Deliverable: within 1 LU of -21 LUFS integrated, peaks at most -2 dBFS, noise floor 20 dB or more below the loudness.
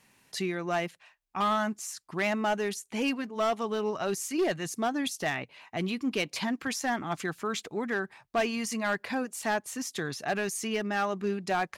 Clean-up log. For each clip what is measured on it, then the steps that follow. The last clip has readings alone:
clipped samples 1.3%; clipping level -22.0 dBFS; loudness -31.0 LUFS; peak level -22.0 dBFS; loudness target -21.0 LUFS
-> clip repair -22 dBFS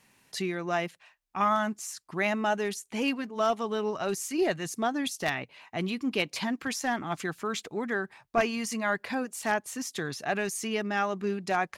clipped samples 0.0%; loudness -30.5 LUFS; peak level -13.0 dBFS; loudness target -21.0 LUFS
-> trim +9.5 dB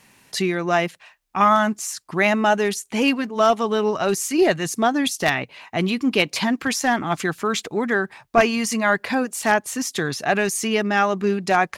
loudness -21.0 LUFS; peak level -3.5 dBFS; noise floor -59 dBFS

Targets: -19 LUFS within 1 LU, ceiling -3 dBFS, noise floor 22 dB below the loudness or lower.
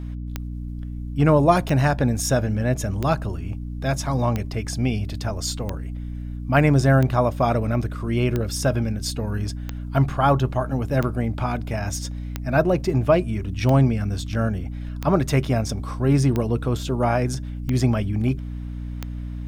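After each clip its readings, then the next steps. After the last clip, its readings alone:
clicks found 15; hum 60 Hz; highest harmonic 300 Hz; hum level -28 dBFS; loudness -22.5 LUFS; peak level -5.0 dBFS; loudness target -19.0 LUFS
-> de-click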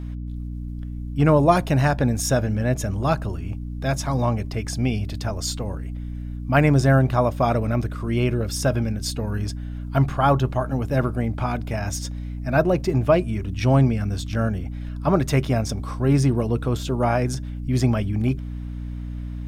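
clicks found 0; hum 60 Hz; highest harmonic 300 Hz; hum level -28 dBFS
-> de-hum 60 Hz, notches 5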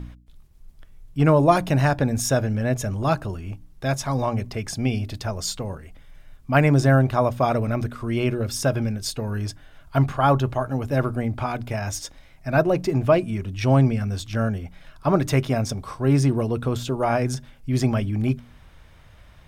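hum not found; loudness -23.0 LUFS; peak level -5.0 dBFS; loudness target -19.0 LUFS
-> trim +4 dB; peak limiter -3 dBFS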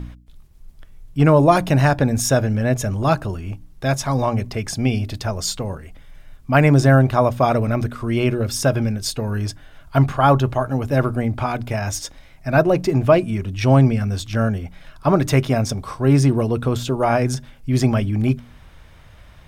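loudness -19.0 LUFS; peak level -3.0 dBFS; noise floor -46 dBFS

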